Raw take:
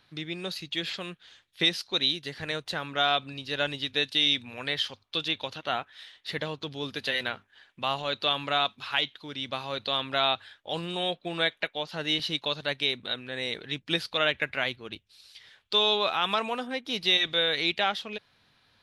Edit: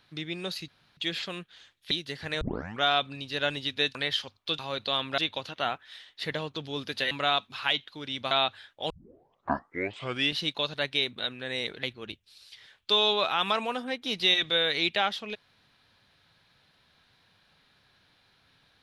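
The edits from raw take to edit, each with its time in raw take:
0:00.68: splice in room tone 0.29 s
0:01.62–0:02.08: remove
0:02.58: tape start 0.40 s
0:04.12–0:04.61: remove
0:07.18–0:08.39: remove
0:09.59–0:10.18: move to 0:05.25
0:10.77: tape start 1.48 s
0:13.70–0:14.66: remove

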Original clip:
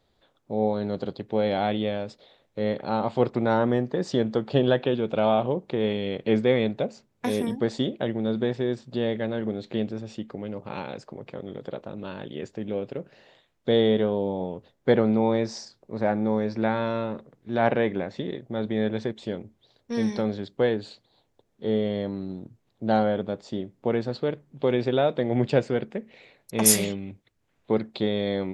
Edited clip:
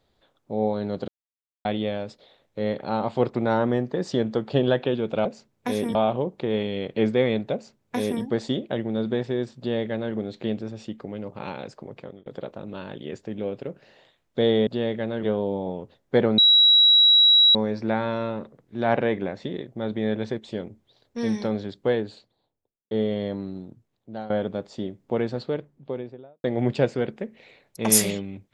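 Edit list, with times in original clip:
0:01.08–0:01.65: silence
0:06.83–0:07.53: duplicate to 0:05.25
0:08.88–0:09.44: duplicate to 0:13.97
0:11.19–0:11.56: fade out equal-power
0:15.12–0:16.29: beep over 3,880 Hz −12 dBFS
0:20.60–0:21.65: fade out and dull
0:22.15–0:23.04: fade out, to −17.5 dB
0:24.04–0:25.18: fade out and dull

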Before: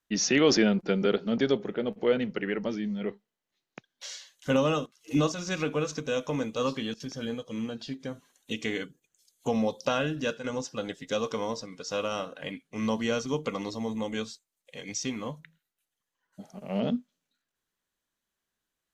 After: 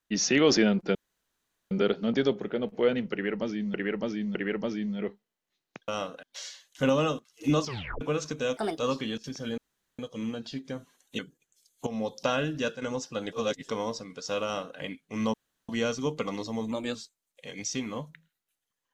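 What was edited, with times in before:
0:00.95: splice in room tone 0.76 s
0:02.37–0:02.98: repeat, 3 plays
0:05.29: tape stop 0.39 s
0:06.24–0:06.54: play speed 145%
0:07.34: splice in room tone 0.41 s
0:08.54–0:08.81: remove
0:09.49–0:09.94: fade in equal-power, from −13 dB
0:10.95–0:11.31: reverse
0:12.06–0:12.41: duplicate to 0:03.90
0:12.96: splice in room tone 0.35 s
0:13.99–0:14.25: play speed 111%

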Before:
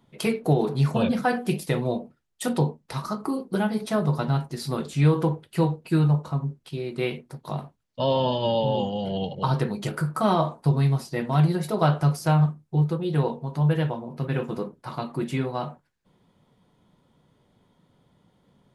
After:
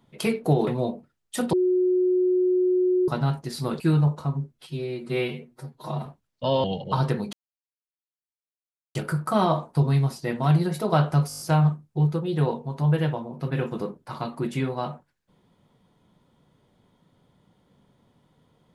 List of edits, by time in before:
0:00.67–0:01.74: remove
0:02.60–0:04.15: beep over 365 Hz −18 dBFS
0:04.87–0:05.87: remove
0:06.60–0:07.62: time-stretch 1.5×
0:08.20–0:09.15: remove
0:09.84: splice in silence 1.62 s
0:12.17: stutter 0.02 s, 7 plays

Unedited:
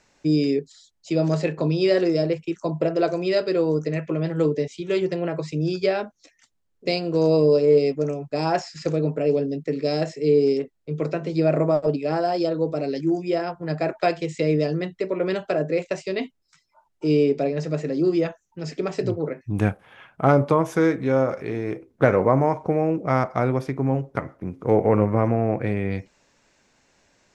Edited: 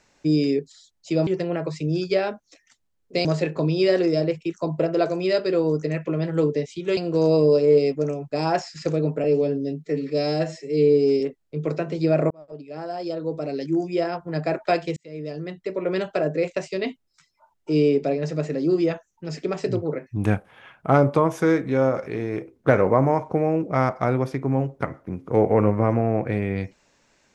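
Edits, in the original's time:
0:04.99–0:06.97: move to 0:01.27
0:09.24–0:10.55: time-stretch 1.5×
0:11.65–0:13.23: fade in
0:14.31–0:15.31: fade in

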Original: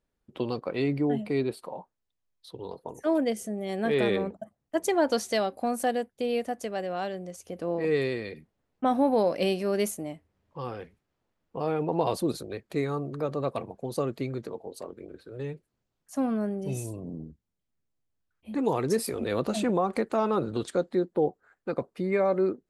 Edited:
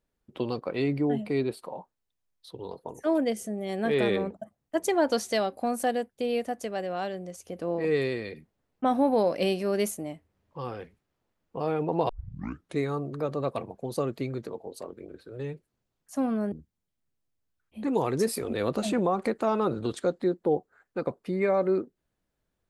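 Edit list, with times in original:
0:12.09: tape start 0.69 s
0:16.52–0:17.23: remove

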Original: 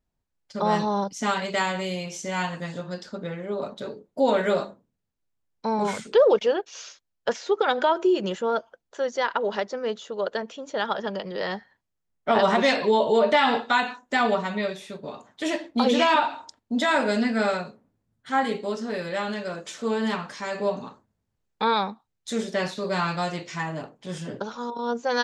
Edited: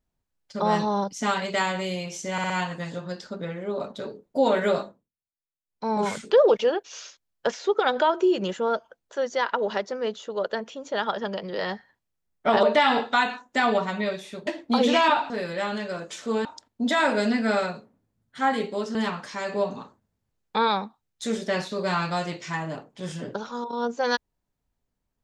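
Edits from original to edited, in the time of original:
0:02.32: stutter 0.06 s, 4 plays
0:04.65–0:05.75: duck −20.5 dB, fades 0.28 s
0:12.45–0:13.20: remove
0:15.04–0:15.53: remove
0:18.86–0:20.01: move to 0:16.36

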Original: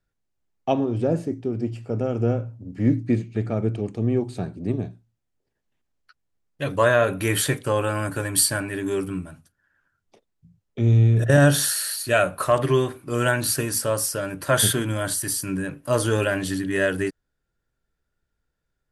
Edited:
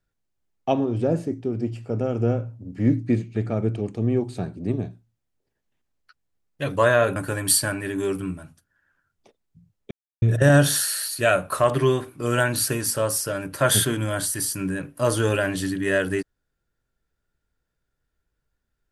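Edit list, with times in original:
0:07.16–0:08.04: remove
0:10.79–0:11.10: silence

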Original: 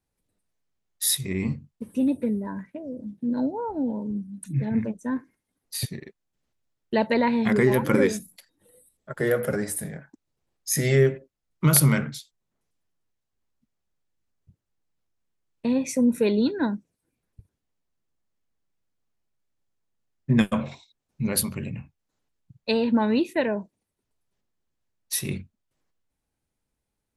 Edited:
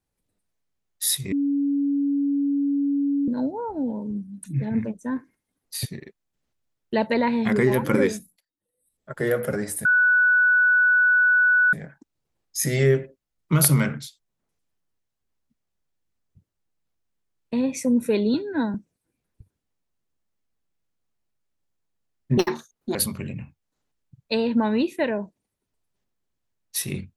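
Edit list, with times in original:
0:01.32–0:03.28: beep over 282 Hz −19.5 dBFS
0:08.08–0:09.11: duck −23.5 dB, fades 0.33 s
0:09.85: insert tone 1,480 Hz −14.5 dBFS 1.88 s
0:16.46–0:16.73: time-stretch 1.5×
0:20.36–0:21.32: play speed 167%

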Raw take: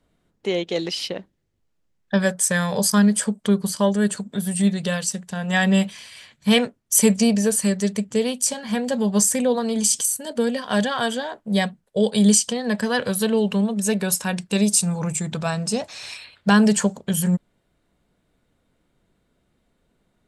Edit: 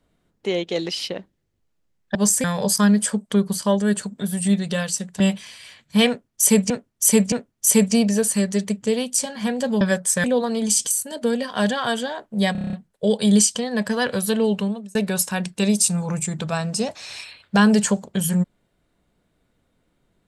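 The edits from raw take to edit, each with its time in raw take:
0:02.15–0:02.58: swap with 0:09.09–0:09.38
0:05.34–0:05.72: remove
0:06.60–0:07.22: repeat, 3 plays
0:11.66: stutter 0.03 s, 8 plays
0:13.47–0:13.88: fade out linear

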